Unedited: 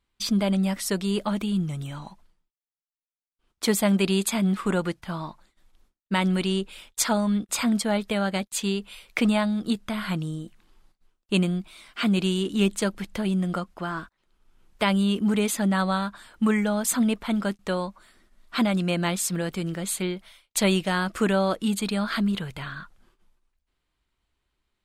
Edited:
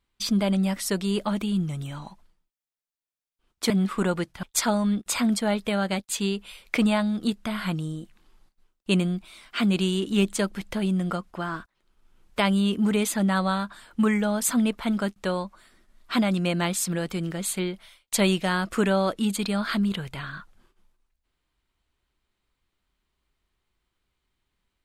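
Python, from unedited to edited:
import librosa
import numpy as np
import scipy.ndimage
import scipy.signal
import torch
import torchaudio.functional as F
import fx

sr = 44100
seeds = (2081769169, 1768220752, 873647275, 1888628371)

y = fx.edit(x, sr, fx.cut(start_s=3.7, length_s=0.68),
    fx.cut(start_s=5.11, length_s=1.75), tone=tone)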